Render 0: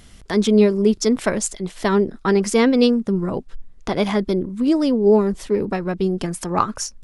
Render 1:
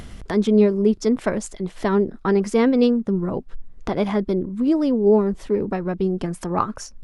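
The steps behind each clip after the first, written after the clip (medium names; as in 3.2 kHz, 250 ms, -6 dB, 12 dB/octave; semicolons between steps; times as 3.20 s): in parallel at +1.5 dB: upward compressor, threshold -18 dBFS; on the sum: treble shelf 2.6 kHz -11 dB; trim -8 dB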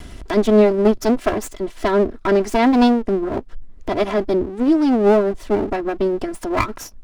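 comb filter that takes the minimum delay 3 ms; trim +3.5 dB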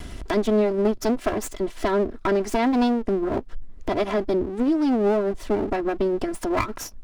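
compression 2.5:1, threshold -21 dBFS, peak gain reduction 8.5 dB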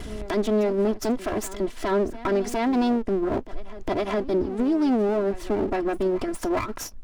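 peak limiter -16.5 dBFS, peak gain reduction 7.5 dB; reverse echo 411 ms -16.5 dB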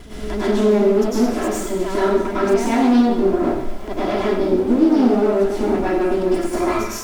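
added noise pink -55 dBFS; plate-style reverb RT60 0.89 s, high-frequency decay 1×, pre-delay 90 ms, DRR -10 dB; loudspeaker Doppler distortion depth 0.12 ms; trim -4 dB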